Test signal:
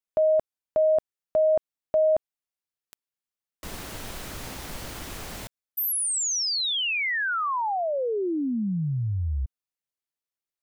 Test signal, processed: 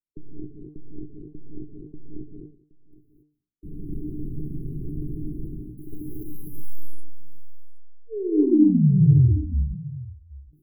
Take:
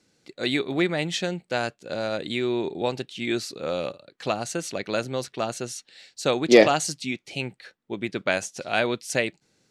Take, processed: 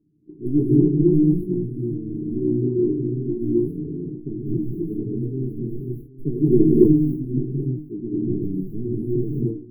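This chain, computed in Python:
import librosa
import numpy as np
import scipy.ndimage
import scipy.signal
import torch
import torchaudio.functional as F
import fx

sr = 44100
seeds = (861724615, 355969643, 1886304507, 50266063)

p1 = fx.tracing_dist(x, sr, depth_ms=0.17)
p2 = fx.dynamic_eq(p1, sr, hz=680.0, q=1.1, threshold_db=-32.0, ratio=4.0, max_db=4)
p3 = 10.0 ** (-12.5 / 20.0) * np.tanh(p2 / 10.0 ** (-12.5 / 20.0))
p4 = p2 + (p3 * 10.0 ** (-4.5 / 20.0))
p5 = fx.brickwall_bandstop(p4, sr, low_hz=420.0, high_hz=10000.0)
p6 = fx.air_absorb(p5, sr, metres=360.0)
p7 = fx.comb_fb(p6, sr, f0_hz=150.0, decay_s=0.19, harmonics='all', damping=0.4, mix_pct=90)
p8 = p7 + fx.echo_single(p7, sr, ms=770, db=-19.0, dry=0)
p9 = fx.rev_gated(p8, sr, seeds[0], gate_ms=300, shape='rising', drr_db=-5.5)
p10 = fx.sustainer(p9, sr, db_per_s=130.0)
y = p10 * 10.0 ** (8.5 / 20.0)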